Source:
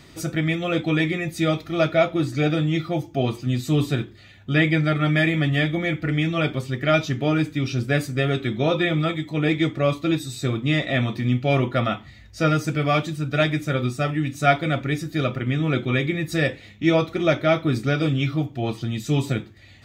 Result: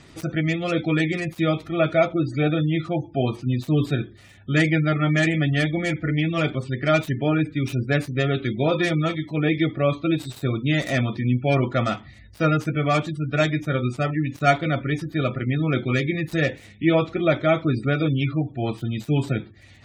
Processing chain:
gap after every zero crossing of 0.083 ms
gate on every frequency bin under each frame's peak −30 dB strong

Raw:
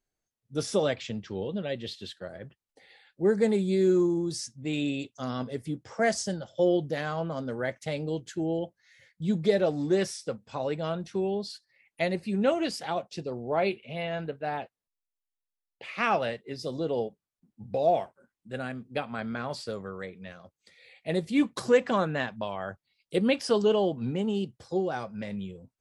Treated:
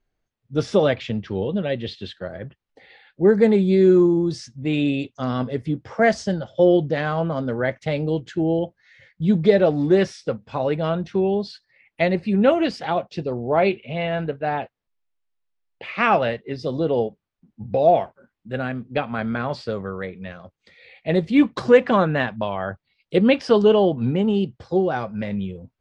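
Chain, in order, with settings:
low-pass filter 3,400 Hz 12 dB per octave
low-shelf EQ 87 Hz +7 dB
level +8 dB

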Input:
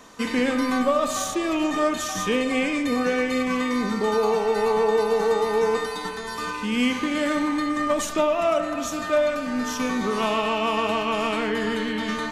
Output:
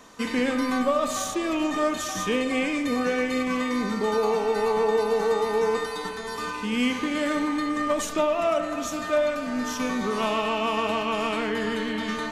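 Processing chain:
echo machine with several playback heads 349 ms, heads second and third, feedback 61%, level −24 dB
level −2 dB

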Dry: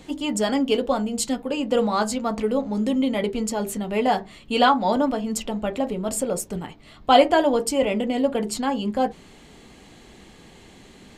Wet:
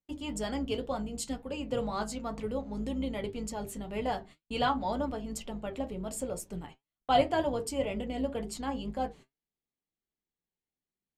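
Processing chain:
sub-octave generator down 2 octaves, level −5 dB
noise gate −38 dBFS, range −39 dB
flanger 2 Hz, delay 5 ms, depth 2.9 ms, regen +73%
level −7 dB

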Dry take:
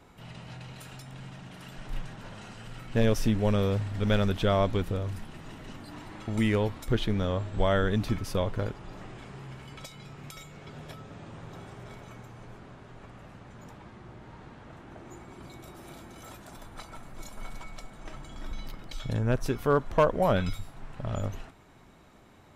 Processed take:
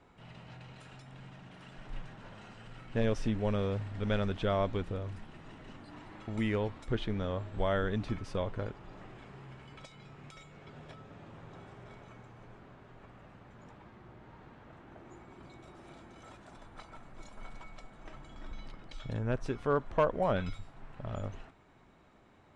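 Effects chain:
Butterworth low-pass 9,300 Hz 36 dB per octave
bass and treble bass −2 dB, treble −8 dB
level −5 dB

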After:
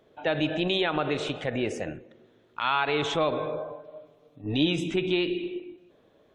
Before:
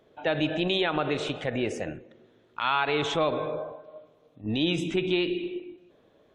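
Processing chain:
0:03.69–0:04.67: comb filter 6.9 ms, depth 63%

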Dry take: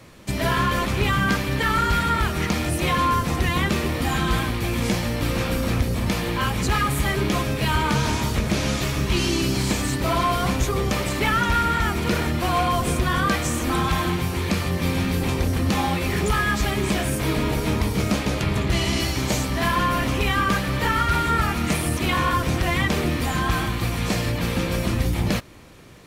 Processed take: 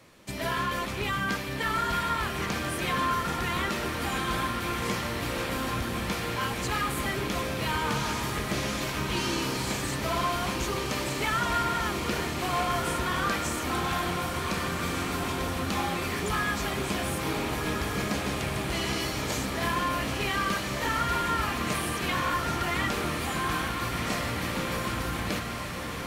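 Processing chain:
low-shelf EQ 190 Hz −8.5 dB
on a send: feedback delay with all-pass diffusion 1,499 ms, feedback 65%, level −5 dB
on the sum: level −6.5 dB

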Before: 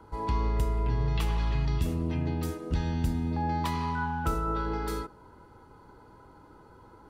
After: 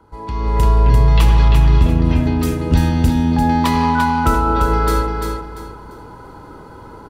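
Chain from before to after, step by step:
0:01.48–0:02.05: low-pass filter 2,200 Hz 6 dB per octave
repeating echo 344 ms, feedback 28%, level −5.5 dB
automatic gain control gain up to 14 dB
on a send at −22.5 dB: convolution reverb RT60 0.75 s, pre-delay 3 ms
on the sum: level +1 dB

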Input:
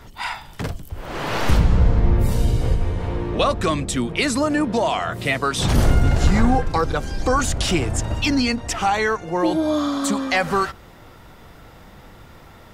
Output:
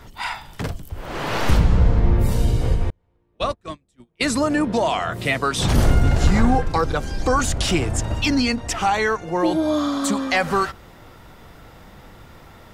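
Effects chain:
0:02.90–0:04.21: noise gate −16 dBFS, range −41 dB

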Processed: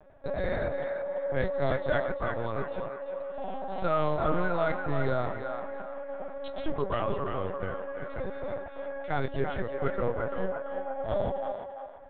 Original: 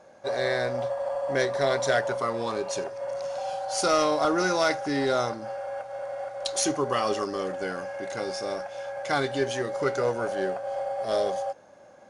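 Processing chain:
high-shelf EQ 3,100 Hz −9 dB
linear-prediction vocoder at 8 kHz pitch kept
low-shelf EQ 130 Hz +5.5 dB
feedback echo with a band-pass in the loop 340 ms, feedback 45%, band-pass 1,300 Hz, level −4 dB
level −4 dB

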